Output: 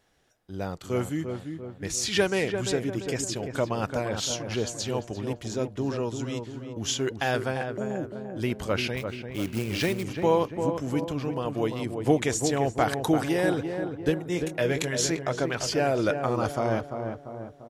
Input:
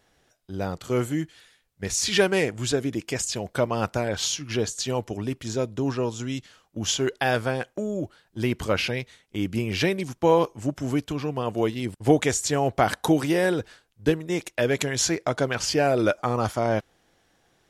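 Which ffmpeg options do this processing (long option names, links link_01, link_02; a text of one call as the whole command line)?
ffmpeg -i in.wav -filter_complex "[0:a]asettb=1/sr,asplit=3[link_01][link_02][link_03];[link_01]atrim=end=8.974[link_04];[link_02]atrim=start=8.97:end=10.04,asetpts=PTS-STARTPTS,afade=type=in:duration=0.004:curve=qsin,afade=type=out:start_time=1.066:duration=0.004:curve=qsin,acrusher=bits=3:mode=log:mix=0:aa=0.000001[link_05];[link_03]atrim=start=10.036[link_06];[link_04][link_05]acrossfade=duration=0.004:curve1=hsin:curve2=qsin[link_07];[link_07][link_06]acrossfade=duration=0.004:curve1=qsin:curve2=hsin,asettb=1/sr,asplit=3[link_08][link_09][link_10];[link_08]atrim=end=14.264[link_11];[link_09]atrim=start=14.26:end=15.1,asetpts=PTS-STARTPTS,afade=type=in:duration=0.004:curve=qsin,afade=type=out:start_time=0.836:duration=0.004:curve=qsin,asplit=2[link_12][link_13];[link_13]adelay=23,volume=-8dB[link_14];[link_12][link_14]amix=inputs=2:normalize=0,atrim=end_sample=37044[link_15];[link_10]atrim=start=15.096[link_16];[link_11][link_15]acrossfade=duration=0.004:curve1=hsin:curve2=qsin[link_17];[link_17][link_16]acrossfade=duration=0.004:curve1=qsin:curve2=hsin,asplit=2[link_18][link_19];[link_19]adelay=344,lowpass=frequency=1400:poles=1,volume=-6dB,asplit=2[link_20][link_21];[link_21]adelay=344,lowpass=frequency=1400:poles=1,volume=0.54,asplit=2[link_22][link_23];[link_23]adelay=344,lowpass=frequency=1400:poles=1,volume=0.54,asplit=2[link_24][link_25];[link_25]adelay=344,lowpass=frequency=1400:poles=1,volume=0.54,asplit=2[link_26][link_27];[link_27]adelay=344,lowpass=frequency=1400:poles=1,volume=0.54,asplit=2[link_28][link_29];[link_29]adelay=344,lowpass=frequency=1400:poles=1,volume=0.54,asplit=2[link_30][link_31];[link_31]adelay=344,lowpass=frequency=1400:poles=1,volume=0.54[link_32];[link_18][link_20][link_22][link_24][link_26][link_28][link_30][link_32]amix=inputs=8:normalize=0,volume=-3.5dB" out.wav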